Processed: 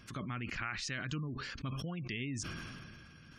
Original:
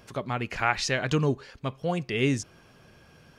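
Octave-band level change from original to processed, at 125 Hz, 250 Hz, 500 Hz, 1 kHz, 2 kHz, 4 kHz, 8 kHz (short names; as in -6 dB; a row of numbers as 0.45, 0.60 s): -9.5, -11.0, -20.0, -14.5, -9.5, -9.0, -8.0 dB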